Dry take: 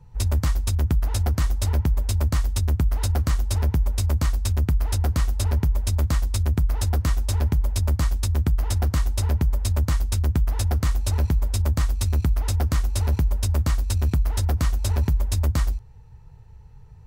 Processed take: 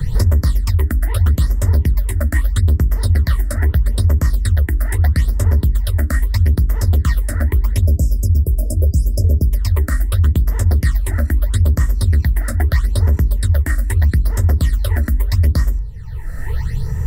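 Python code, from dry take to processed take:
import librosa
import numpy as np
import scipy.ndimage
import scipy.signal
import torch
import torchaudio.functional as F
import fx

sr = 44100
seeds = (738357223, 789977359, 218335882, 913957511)

y = fx.peak_eq(x, sr, hz=1900.0, db=10.5, octaves=0.26)
y = fx.spec_erase(y, sr, start_s=7.86, length_s=1.65, low_hz=680.0, high_hz=4800.0)
y = fx.graphic_eq_31(y, sr, hz=(800, 2500, 6300), db=(-12, -9, -10))
y = fx.phaser_stages(y, sr, stages=8, low_hz=120.0, high_hz=4000.0, hz=0.78, feedback_pct=35)
y = fx.hum_notches(y, sr, base_hz=50, count=8)
y = fx.band_squash(y, sr, depth_pct=100)
y = y * librosa.db_to_amplitude(6.5)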